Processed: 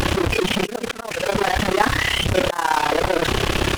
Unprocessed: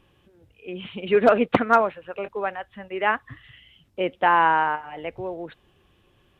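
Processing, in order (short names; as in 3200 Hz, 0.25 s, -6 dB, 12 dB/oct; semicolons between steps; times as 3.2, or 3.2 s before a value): delta modulation 64 kbps, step -18.5 dBFS; bell 160 Hz -3 dB 0.81 oct; auto swell 0.542 s; in parallel at -9 dB: bit-crush 6-bit; on the sum: AM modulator 30 Hz, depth 85%; granular stretch 0.59×, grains 0.113 s; slew limiter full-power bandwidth 160 Hz; gain +8 dB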